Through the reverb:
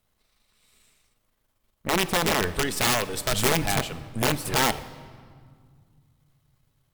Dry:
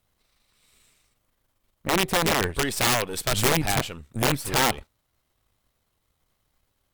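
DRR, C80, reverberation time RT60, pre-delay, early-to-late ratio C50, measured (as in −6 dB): 12.0 dB, 17.0 dB, 1.9 s, 4 ms, 15.0 dB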